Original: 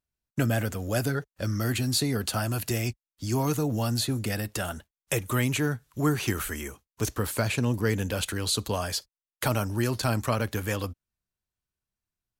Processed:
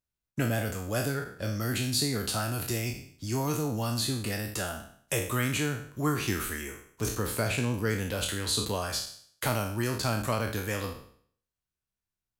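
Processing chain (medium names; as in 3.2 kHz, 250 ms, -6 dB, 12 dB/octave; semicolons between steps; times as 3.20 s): spectral sustain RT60 0.57 s; trim -4 dB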